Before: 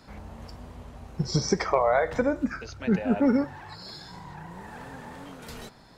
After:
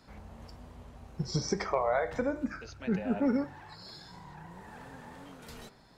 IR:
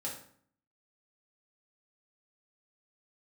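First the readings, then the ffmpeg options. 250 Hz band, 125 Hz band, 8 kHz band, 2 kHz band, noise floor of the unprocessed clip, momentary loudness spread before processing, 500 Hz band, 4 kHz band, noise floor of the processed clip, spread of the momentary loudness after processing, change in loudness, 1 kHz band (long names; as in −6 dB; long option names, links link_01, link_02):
−6.0 dB, −6.0 dB, −6.0 dB, −6.5 dB, −52 dBFS, 21 LU, −6.5 dB, −6.0 dB, −58 dBFS, 21 LU, −6.0 dB, −6.5 dB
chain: -af "bandreject=frequency=99.8:width_type=h:width=4,bandreject=frequency=199.6:width_type=h:width=4,bandreject=frequency=299.4:width_type=h:width=4,bandreject=frequency=399.2:width_type=h:width=4,bandreject=frequency=499:width_type=h:width=4,bandreject=frequency=598.8:width_type=h:width=4,bandreject=frequency=698.6:width_type=h:width=4,bandreject=frequency=798.4:width_type=h:width=4,bandreject=frequency=898.2:width_type=h:width=4,bandreject=frequency=998:width_type=h:width=4,bandreject=frequency=1097.8:width_type=h:width=4,bandreject=frequency=1197.6:width_type=h:width=4,bandreject=frequency=1297.4:width_type=h:width=4,bandreject=frequency=1397.2:width_type=h:width=4,bandreject=frequency=1497:width_type=h:width=4,bandreject=frequency=1596.8:width_type=h:width=4,bandreject=frequency=1696.6:width_type=h:width=4,bandreject=frequency=1796.4:width_type=h:width=4,bandreject=frequency=1896.2:width_type=h:width=4,bandreject=frequency=1996:width_type=h:width=4,bandreject=frequency=2095.8:width_type=h:width=4,bandreject=frequency=2195.6:width_type=h:width=4,bandreject=frequency=2295.4:width_type=h:width=4,bandreject=frequency=2395.2:width_type=h:width=4,bandreject=frequency=2495:width_type=h:width=4,bandreject=frequency=2594.8:width_type=h:width=4,bandreject=frequency=2694.6:width_type=h:width=4,volume=-6dB"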